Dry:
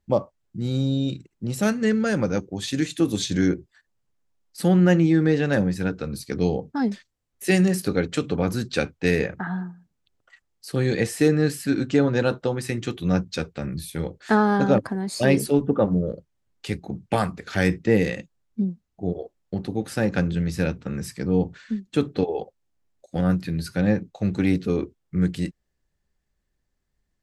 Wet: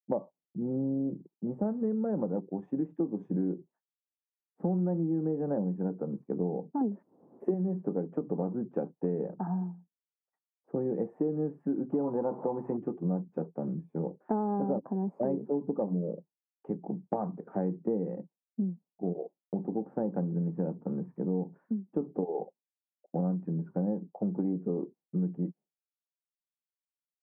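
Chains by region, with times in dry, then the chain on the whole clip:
6.81–7.54 s: peaking EQ 340 Hz +8.5 dB 1.4 oct + upward compressor, threshold -20 dBFS
11.92–12.77 s: jump at every zero crossing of -32 dBFS + peaking EQ 940 Hz +8 dB 0.57 oct + band-stop 2.9 kHz, Q 20
whole clip: expander -42 dBFS; elliptic band-pass 170–900 Hz, stop band 60 dB; compression 5:1, threshold -26 dBFS; trim -1.5 dB

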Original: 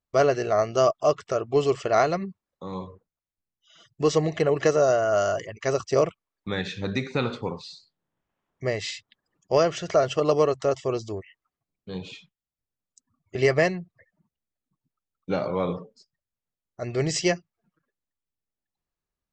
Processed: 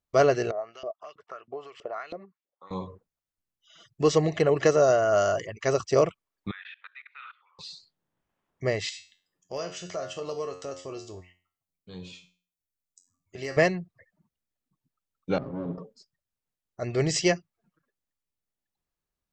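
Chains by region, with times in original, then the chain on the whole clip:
0.51–2.71 s: compression 4:1, threshold -26 dBFS + LFO band-pass saw up 3.1 Hz 380–3400 Hz
6.51–7.59 s: elliptic band-pass 1.2–3.1 kHz, stop band 80 dB + level held to a coarse grid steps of 22 dB
8.89–13.57 s: treble shelf 4.9 kHz +11 dB + feedback comb 90 Hz, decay 0.38 s, mix 80% + compression 1.5:1, threshold -38 dBFS
15.38–15.78 s: comb filter that takes the minimum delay 7.3 ms + band-pass filter 190 Hz, Q 1.2
whole clip: none

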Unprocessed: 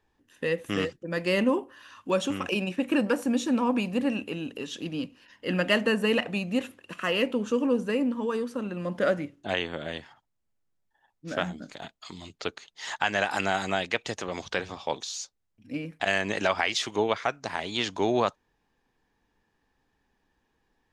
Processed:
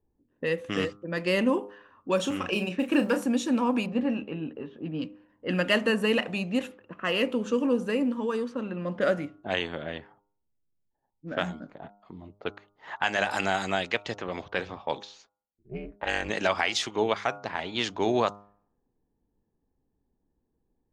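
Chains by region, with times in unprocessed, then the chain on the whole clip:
2.16–3.25 s: block-companded coder 7-bit + doubling 34 ms -9 dB
3.86–5.02 s: tape spacing loss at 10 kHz 23 dB + doubling 13 ms -7.5 dB
15.22–16.30 s: gate -54 dBFS, range -9 dB + high-pass 43 Hz + ring modulator 120 Hz
whole clip: level-controlled noise filter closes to 440 Hz, open at -24 dBFS; de-hum 101.8 Hz, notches 14

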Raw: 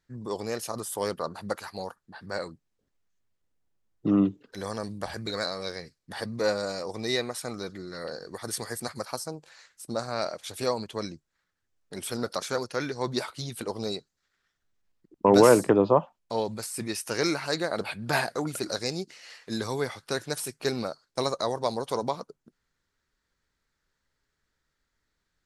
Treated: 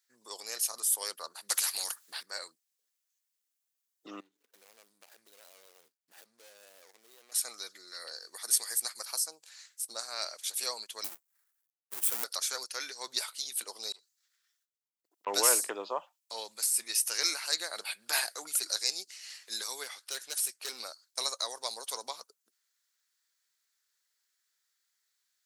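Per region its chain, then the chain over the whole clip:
1.49–2.23 s: bass shelf 160 Hz +11 dB + spectrum-flattening compressor 2:1
4.20–7.32 s: median filter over 41 samples + compression 5:1, threshold -43 dBFS
11.04–12.24 s: square wave that keeps the level + peaking EQ 4.1 kHz -9 dB 2.1 oct
13.92–15.27 s: compression 10:1, threshold -42 dBFS + transformer saturation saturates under 1.8 kHz
19.83–20.80 s: overload inside the chain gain 25.5 dB + treble shelf 6.2 kHz -6 dB
whole clip: high-pass 330 Hz 12 dB/octave; differentiator; trim +7 dB

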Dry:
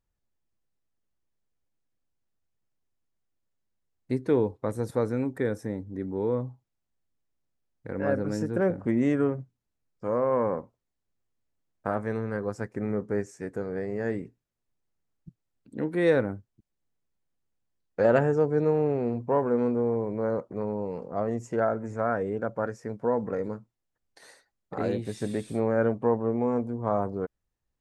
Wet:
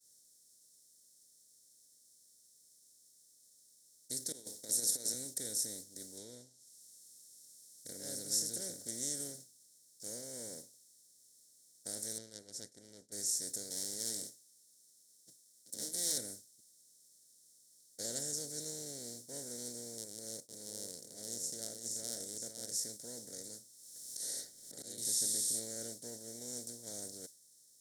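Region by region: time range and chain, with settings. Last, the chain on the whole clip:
4.32–5.14 s: high-pass 240 Hz + flutter echo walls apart 11.3 m, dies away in 0.22 s + compressor with a negative ratio -31 dBFS, ratio -0.5
6.17–7.88 s: low-pass that closes with the level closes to 2.8 kHz, closed at -25 dBFS + treble shelf 4.4 kHz +7.5 dB
12.18–13.12 s: low-pass 2.6 kHz + valve stage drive 24 dB, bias 0.55 + tape noise reduction on one side only decoder only
13.70–16.18 s: comb filter that takes the minimum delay 9.4 ms + high-pass 150 Hz
19.98–22.72 s: peaking EQ 1.6 kHz -7.5 dB 1.5 oct + transient shaper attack -7 dB, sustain -12 dB + delay 507 ms -8 dB
23.28–24.98 s: slow attack 549 ms + three bands compressed up and down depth 100%
whole clip: spectral levelling over time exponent 0.4; inverse Chebyshev high-pass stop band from 2.8 kHz, stop band 40 dB; expander -54 dBFS; trim +12.5 dB

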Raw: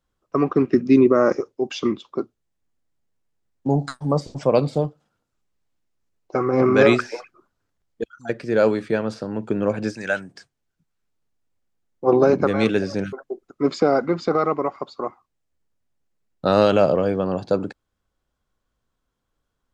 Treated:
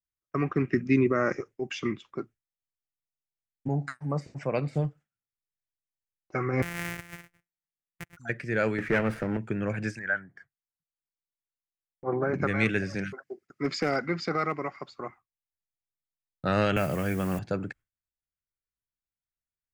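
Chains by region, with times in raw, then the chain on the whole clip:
3.68–4.75 s: high-pass 220 Hz 6 dB/octave + treble shelf 5.1 kHz -10 dB + band-stop 3.3 kHz, Q 7.8
6.62–8.17 s: sorted samples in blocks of 256 samples + bass shelf 240 Hz -7.5 dB + compression 2:1, threshold -37 dBFS
8.78–9.37 s: bass shelf 450 Hz +5.5 dB + overdrive pedal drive 18 dB, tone 1.3 kHz, clips at -5.5 dBFS + sliding maximum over 5 samples
9.99–12.34 s: Savitzky-Golay filter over 41 samples + bass shelf 420 Hz -6 dB
12.95–14.91 s: high-pass 120 Hz + peaking EQ 4.8 kHz +10.5 dB 0.59 oct + hard clipper -9.5 dBFS
16.76–17.39 s: peaking EQ 510 Hz -4.5 dB 0.51 oct + modulation noise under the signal 24 dB + three bands compressed up and down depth 70%
whole clip: gate with hold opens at -39 dBFS; graphic EQ 125/250/500/1000/2000/4000 Hz +4/-5/-7/-8/+11/-10 dB; trim -3 dB

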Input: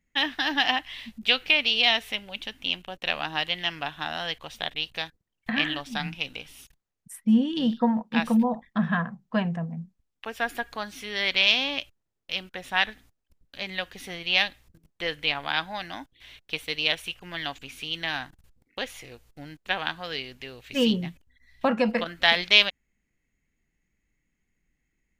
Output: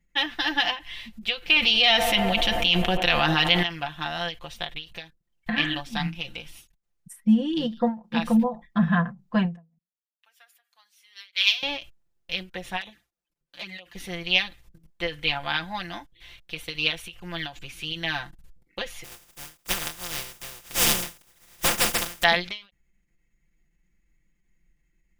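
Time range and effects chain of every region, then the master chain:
1.56–3.63 s: band-stop 580 Hz, Q 9.3 + feedback echo behind a band-pass 88 ms, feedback 81%, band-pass 610 Hz, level -14 dB + level flattener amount 70%
9.78–11.63 s: high-pass 1.2 kHz + treble shelf 5 kHz +11 dB + upward expansion 2.5:1, over -31 dBFS
12.81–13.95 s: high-pass 340 Hz 6 dB/octave + touch-sensitive flanger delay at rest 8.4 ms, full sweep at -27.5 dBFS
19.03–22.22 s: spectral contrast reduction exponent 0.14 + band-stop 4.2 kHz, Q 11
whole clip: bass shelf 100 Hz +9 dB; comb 5.8 ms, depth 82%; endings held to a fixed fall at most 190 dB/s; trim -1 dB

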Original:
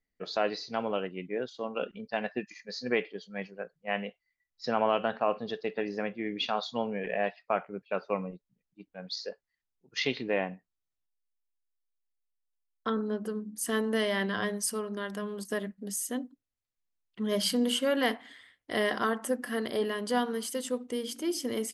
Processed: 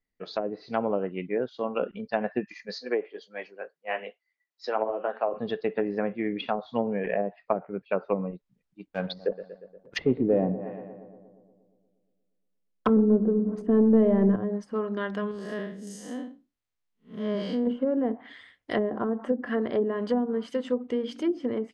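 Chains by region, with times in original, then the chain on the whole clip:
2.78–5.34 s: high-pass 310 Hz 24 dB/octave + flange 1.8 Hz, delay 5.5 ms, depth 5.6 ms, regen -33%
8.86–14.36 s: waveshaping leveller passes 2 + filtered feedback delay 118 ms, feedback 69%, low-pass 1.6 kHz, level -14 dB
15.31–17.67 s: spectral blur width 171 ms + bass shelf 320 Hz -2.5 dB
whole clip: low-pass that closes with the level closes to 440 Hz, closed at -25 dBFS; treble shelf 6.8 kHz -11.5 dB; level rider gain up to 5.5 dB

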